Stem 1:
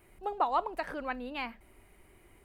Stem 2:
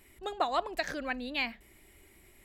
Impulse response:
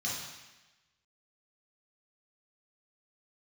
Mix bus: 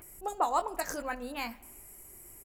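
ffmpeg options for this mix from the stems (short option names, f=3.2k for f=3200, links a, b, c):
-filter_complex "[0:a]lowpass=f=2.1k:p=1,volume=0.5dB,asplit=2[a][b];[b]volume=-19.5dB[c];[1:a]aexciter=amount=13.7:drive=4.4:freq=5.4k,volume=-1,adelay=19,volume=-10.5dB[d];[2:a]atrim=start_sample=2205[e];[c][e]afir=irnorm=-1:irlink=0[f];[a][d][f]amix=inputs=3:normalize=0,acompressor=mode=upward:threshold=-50dB:ratio=2.5"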